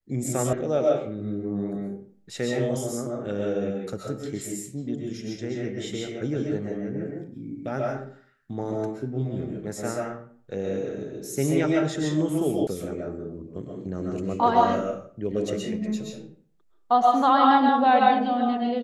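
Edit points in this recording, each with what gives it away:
0.53 s: sound stops dead
12.67 s: sound stops dead

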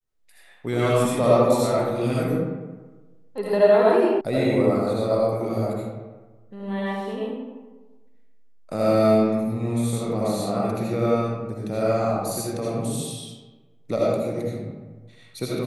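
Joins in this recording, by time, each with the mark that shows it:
4.21 s: sound stops dead

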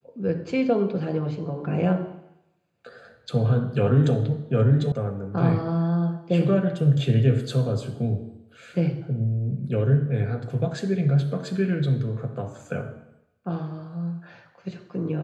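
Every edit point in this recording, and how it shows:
4.92 s: sound stops dead

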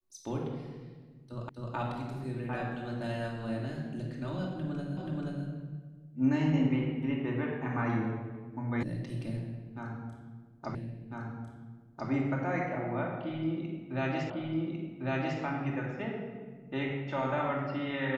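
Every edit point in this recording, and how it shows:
1.49 s: repeat of the last 0.26 s
4.97 s: repeat of the last 0.48 s
8.83 s: sound stops dead
10.75 s: repeat of the last 1.35 s
14.30 s: repeat of the last 1.1 s

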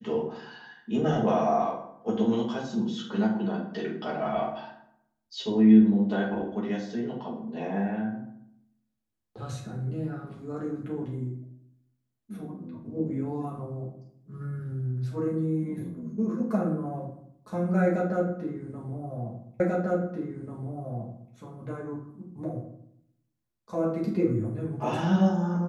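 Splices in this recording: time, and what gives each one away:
19.60 s: repeat of the last 1.74 s

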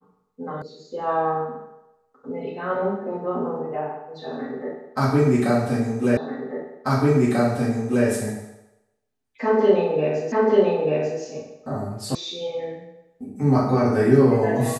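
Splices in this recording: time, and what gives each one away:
0.62 s: sound stops dead
6.17 s: repeat of the last 1.89 s
10.32 s: repeat of the last 0.89 s
12.15 s: sound stops dead

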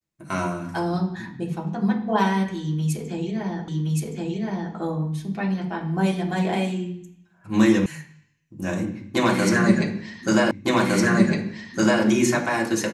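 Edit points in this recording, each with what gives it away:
3.68 s: repeat of the last 1.07 s
7.86 s: sound stops dead
10.51 s: repeat of the last 1.51 s

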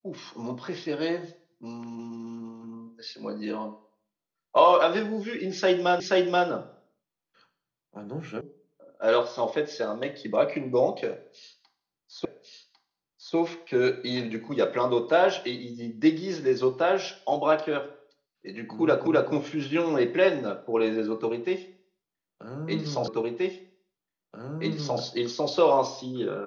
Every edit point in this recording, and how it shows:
6.00 s: repeat of the last 0.48 s
8.41 s: sound stops dead
12.25 s: repeat of the last 1.1 s
19.07 s: repeat of the last 0.26 s
23.08 s: repeat of the last 1.93 s

